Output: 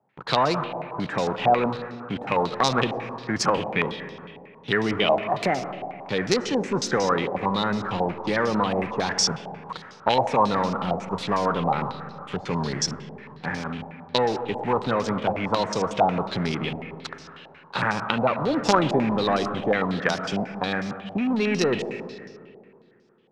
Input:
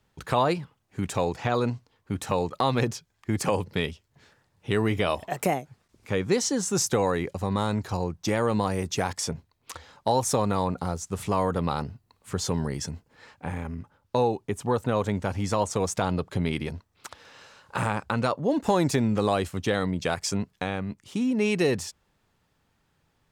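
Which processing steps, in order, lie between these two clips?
high-pass filter 130 Hz 24 dB per octave
in parallel at −8.5 dB: log-companded quantiser 2 bits
on the sum: comb and all-pass reverb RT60 2.4 s, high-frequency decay 0.6×, pre-delay 50 ms, DRR 8.5 dB
low-pass on a step sequencer 11 Hz 760–5,400 Hz
level −2 dB

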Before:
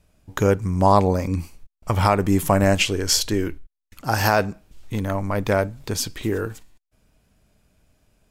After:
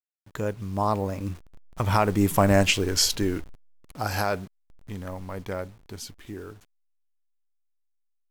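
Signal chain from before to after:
hold until the input has moved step −37.5 dBFS
source passing by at 0:02.65, 20 m/s, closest 17 metres
level −1.5 dB

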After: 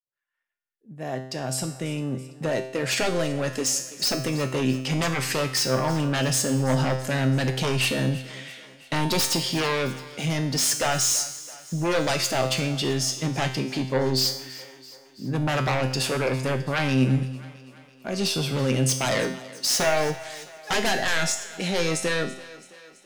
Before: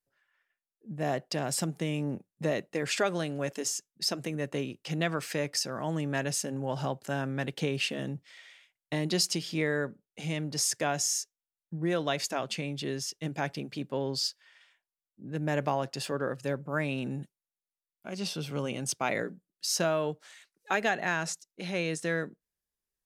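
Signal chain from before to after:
fade in at the beginning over 4.31 s
sine wavefolder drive 14 dB, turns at −12.5 dBFS
tuned comb filter 130 Hz, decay 0.69 s, harmonics all, mix 80%
on a send: feedback echo with a high-pass in the loop 332 ms, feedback 60%, high-pass 220 Hz, level −18 dB
on the sum: level +4.5 dB

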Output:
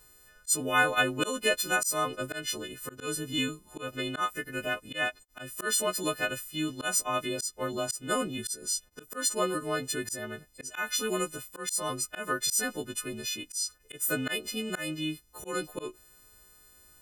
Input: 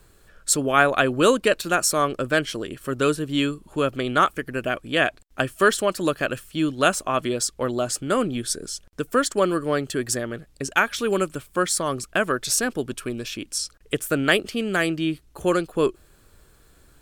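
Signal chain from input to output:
every partial snapped to a pitch grid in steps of 3 semitones
volume swells 160 ms
level −8.5 dB

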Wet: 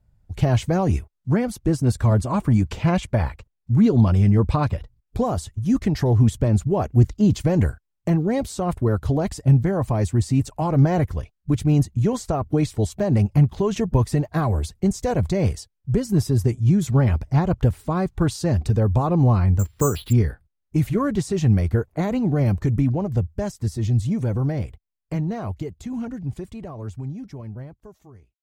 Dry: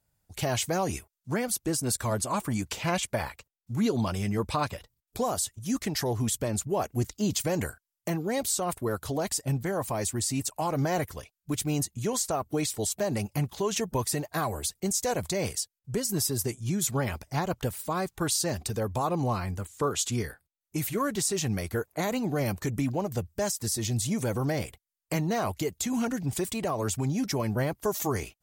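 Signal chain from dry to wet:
fade-out on the ending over 7.59 s
0:19.59–0:20.13: bad sample-rate conversion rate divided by 6×, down filtered, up zero stuff
RIAA equalisation playback
level +3 dB

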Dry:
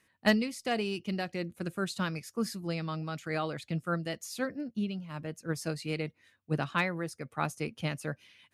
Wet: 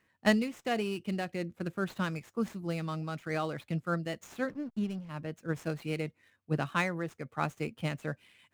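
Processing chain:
running median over 9 samples
0:04.48–0:05.09: slack as between gear wheels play −45.5 dBFS

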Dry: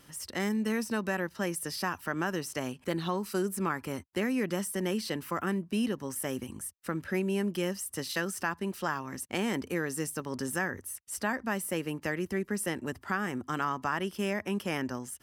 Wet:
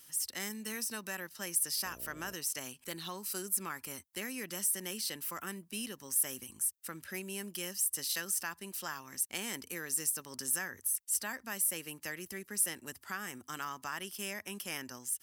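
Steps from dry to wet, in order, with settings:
first-order pre-emphasis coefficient 0.9
0:01.84–0:02.33: hum with harmonics 60 Hz, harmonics 11, −60 dBFS −1 dB per octave
level +5.5 dB

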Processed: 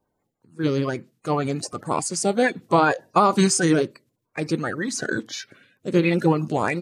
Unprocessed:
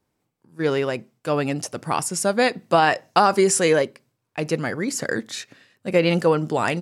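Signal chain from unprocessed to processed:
spectral magnitudes quantised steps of 30 dB
formants moved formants −2 semitones

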